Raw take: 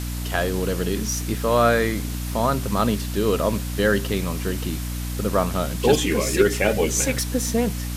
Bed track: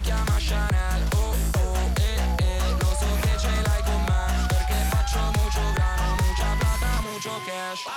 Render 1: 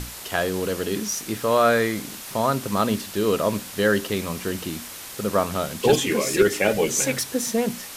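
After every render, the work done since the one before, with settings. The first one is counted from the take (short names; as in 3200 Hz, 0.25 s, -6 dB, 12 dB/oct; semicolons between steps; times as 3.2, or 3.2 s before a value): notches 60/120/180/240/300 Hz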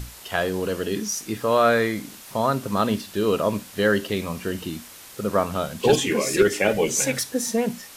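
noise print and reduce 6 dB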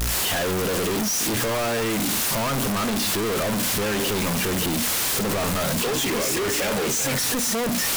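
infinite clipping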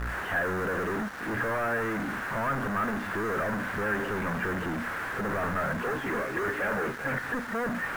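ladder low-pass 1800 Hz, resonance 60%; in parallel at -6 dB: bit-crush 7-bit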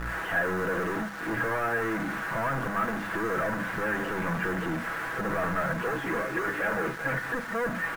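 notches 50/100/150/200 Hz; comb 6.1 ms, depth 45%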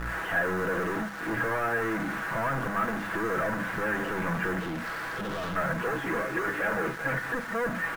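4.6–5.56 hard clip -31 dBFS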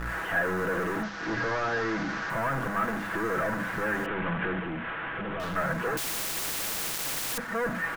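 1.03–2.3 delta modulation 32 kbps, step -37.5 dBFS; 4.06–5.4 CVSD 16 kbps; 5.97–7.38 spectral compressor 10:1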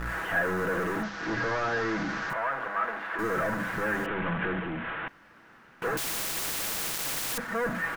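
2.33–3.19 three-band isolator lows -20 dB, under 420 Hz, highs -18 dB, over 3800 Hz; 5.08–5.82 room tone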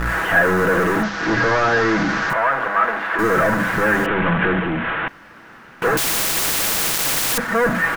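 gain +12 dB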